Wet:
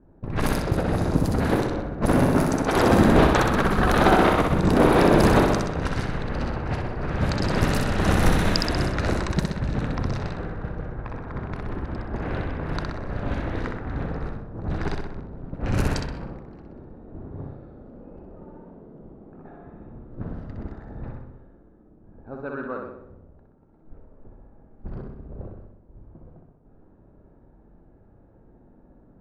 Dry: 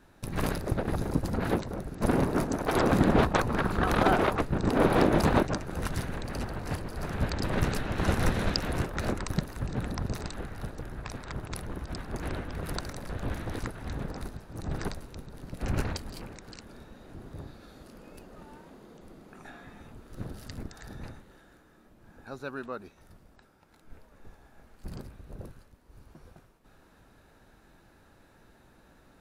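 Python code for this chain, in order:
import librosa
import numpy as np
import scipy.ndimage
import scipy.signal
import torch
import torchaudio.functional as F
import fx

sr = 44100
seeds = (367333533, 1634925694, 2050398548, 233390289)

y = fx.room_flutter(x, sr, wall_m=10.8, rt60_s=1.0)
y = fx.env_lowpass(y, sr, base_hz=500.0, full_db=-22.0)
y = F.gain(torch.from_numpy(y), 4.5).numpy()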